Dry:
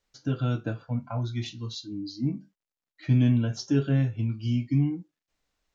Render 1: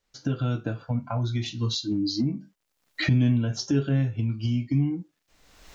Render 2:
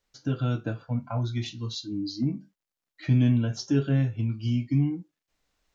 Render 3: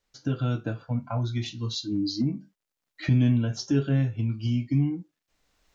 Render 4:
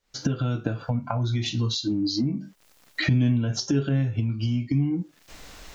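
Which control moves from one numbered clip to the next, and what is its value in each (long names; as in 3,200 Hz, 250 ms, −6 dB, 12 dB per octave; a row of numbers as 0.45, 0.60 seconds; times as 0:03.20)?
camcorder AGC, rising by: 34, 5, 13, 91 dB per second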